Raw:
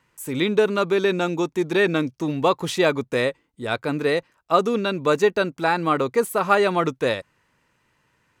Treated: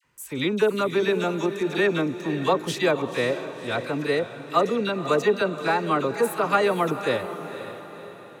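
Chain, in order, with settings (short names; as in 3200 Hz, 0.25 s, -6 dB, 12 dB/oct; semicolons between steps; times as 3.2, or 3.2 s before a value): dispersion lows, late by 46 ms, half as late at 1300 Hz; on a send: diffused feedback echo 0.519 s, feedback 47%, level -11 dB; on the sum: gain -2.5 dB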